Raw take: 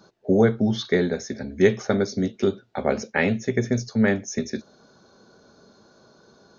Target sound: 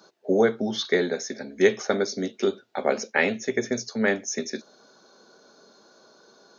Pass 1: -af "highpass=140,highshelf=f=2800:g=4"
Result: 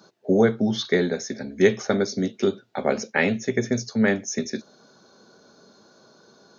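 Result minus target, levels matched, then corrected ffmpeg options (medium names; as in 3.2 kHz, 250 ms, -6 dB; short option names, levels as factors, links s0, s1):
125 Hz band +7.0 dB
-af "highpass=300,highshelf=f=2800:g=4"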